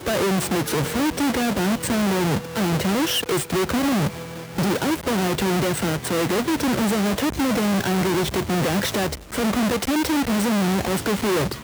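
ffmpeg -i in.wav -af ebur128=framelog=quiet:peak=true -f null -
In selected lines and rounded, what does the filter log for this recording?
Integrated loudness:
  I:         -21.9 LUFS
  Threshold: -32.0 LUFS
Loudness range:
  LRA:         0.9 LU
  Threshold: -42.0 LUFS
  LRA low:   -22.6 LUFS
  LRA high:  -21.6 LUFS
True peak:
  Peak:      -10.6 dBFS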